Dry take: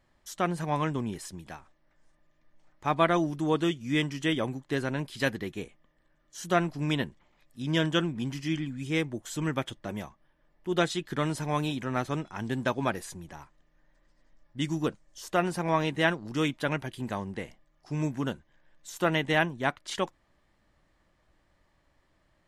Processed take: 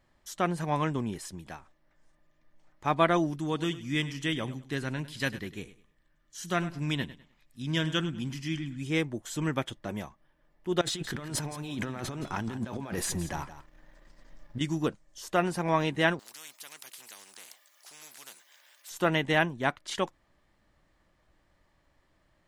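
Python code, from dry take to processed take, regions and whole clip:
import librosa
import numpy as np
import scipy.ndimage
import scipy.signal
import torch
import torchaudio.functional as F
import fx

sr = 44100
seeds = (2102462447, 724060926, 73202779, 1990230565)

y = fx.chain(x, sr, fx.peak_eq(hz=570.0, db=-7.0, octaves=2.1),
    fx.echo_feedback(ms=101, feedback_pct=27, wet_db=-15.5), at=(3.36, 8.79))
y = fx.chain(y, sr, fx.over_compress(threshold_db=-39.0, ratio=-1.0),
    fx.leveller(passes=1),
    fx.echo_single(ms=170, db=-13.5), at=(10.81, 14.61))
y = fx.chain(y, sr, fx.highpass(hz=480.0, slope=12),
    fx.differentiator(),
    fx.spectral_comp(ratio=4.0), at=(16.19, 18.9))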